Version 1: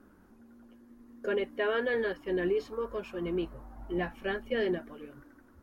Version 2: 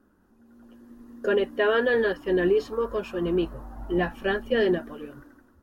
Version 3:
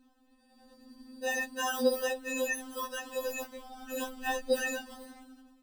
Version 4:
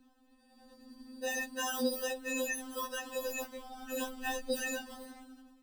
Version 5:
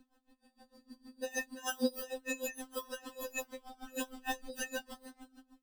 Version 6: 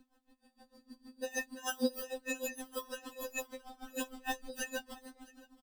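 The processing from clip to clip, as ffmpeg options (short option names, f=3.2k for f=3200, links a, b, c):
-af "bandreject=f=2.2k:w=6.9,dynaudnorm=f=170:g=7:m=12dB,volume=-4.5dB"
-filter_complex "[0:a]asplit=2[a][b];[b]alimiter=limit=-22.5dB:level=0:latency=1:release=35,volume=-1dB[c];[a][c]amix=inputs=2:normalize=0,acrusher=samples=20:mix=1:aa=0.000001,afftfilt=real='re*3.46*eq(mod(b,12),0)':imag='im*3.46*eq(mod(b,12),0)':win_size=2048:overlap=0.75,volume=-7dB"
-filter_complex "[0:a]acrossover=split=310|3000[a][b][c];[b]acompressor=threshold=-35dB:ratio=6[d];[a][d][c]amix=inputs=3:normalize=0"
-af "aeval=exprs='val(0)*pow(10,-22*(0.5-0.5*cos(2*PI*6.5*n/s))/20)':c=same,volume=2.5dB"
-af "aecho=1:1:667:0.075"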